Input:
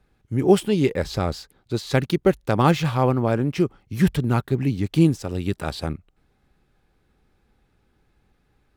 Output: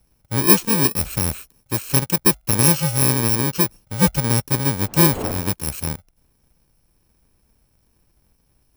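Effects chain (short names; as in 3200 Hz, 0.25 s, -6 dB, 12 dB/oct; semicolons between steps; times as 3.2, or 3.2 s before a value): FFT order left unsorted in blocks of 64 samples; 4.83–5.49 wind noise 560 Hz -32 dBFS; gain +2 dB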